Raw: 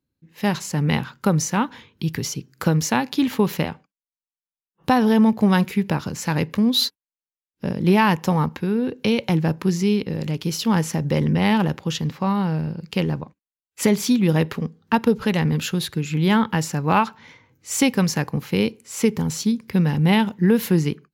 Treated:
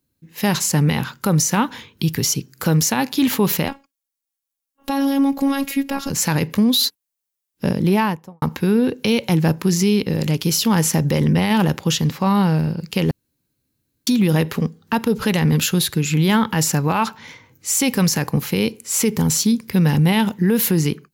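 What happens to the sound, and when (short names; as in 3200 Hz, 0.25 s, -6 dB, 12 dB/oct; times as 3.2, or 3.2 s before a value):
3.68–6.1 robotiser 276 Hz
7.66–8.42 studio fade out
13.11–14.07 room tone
whole clip: high shelf 5900 Hz +11.5 dB; limiter -14.5 dBFS; gain +5.5 dB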